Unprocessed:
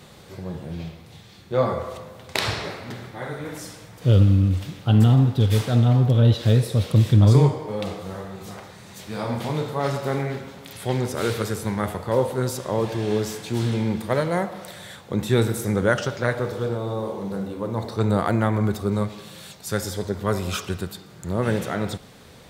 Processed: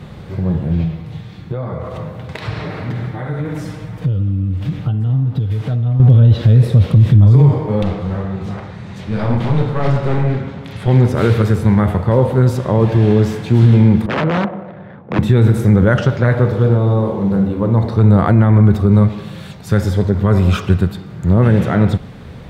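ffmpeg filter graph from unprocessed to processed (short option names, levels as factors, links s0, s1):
-filter_complex "[0:a]asettb=1/sr,asplit=3[s0][s1][s2];[s0]atrim=end=0.844[s3];[s1]atrim=start=0.84:end=6,asetpts=PTS-STARTPTS,afade=t=in:d=0.004:c=qsin,afade=t=out:st=5.156:d=0.004:c=qsin,acompressor=threshold=0.0251:ratio=6:attack=3.2:release=140:knee=1:detection=peak,aecho=1:1:6.5:0.36,atrim=end_sample=227556[s4];[s2]atrim=start=5.996[s5];[s3][s4]acrossfade=d=0.004:c1=hsin:c2=qsin[s6];[s6][s5]acrossfade=d=0.004:c1=qsin:c2=hsin,asettb=1/sr,asplit=3[s7][s8][s9];[s7]atrim=end=7.824[s10];[s8]atrim=start=7.82:end=10.88,asetpts=PTS-STARTPTS,afade=t=in:d=0.004:c=qsin,afade=t=out:st=3.056:d=0.004:c=qsin,aemphasis=mode=production:type=cd,adynamicsmooth=sensitivity=2.5:basefreq=5000,aeval=exprs='clip(val(0),-1,0.0282)':c=same[s11];[s9]atrim=start=10.876[s12];[s10][s11]acrossfade=d=0.004:c1=hsin:c2=qsin[s13];[s13][s12]acrossfade=d=0.004:c1=qsin:c2=hsin,asettb=1/sr,asplit=3[s14][s15][s16];[s14]atrim=end=14.064[s17];[s15]atrim=start=14.06:end=15.19,asetpts=PTS-STARTPTS,afade=t=in:d=0.004:c=qsin,afade=t=out:st=1.126:d=0.004:c=qsin,adynamicsmooth=sensitivity=3.5:basefreq=610,aeval=exprs='(mod(8.91*val(0)+1,2)-1)/8.91':c=same,highpass=180,lowpass=3600[s18];[s16]atrim=start=15.186[s19];[s17][s18]acrossfade=d=0.004:c1=hsin:c2=qsin[s20];[s20][s19]acrossfade=d=0.004:c1=qsin:c2=hsin,bass=f=250:g=10,treble=f=4000:g=-14,alimiter=level_in=2.99:limit=0.891:release=50:level=0:latency=1,volume=0.841"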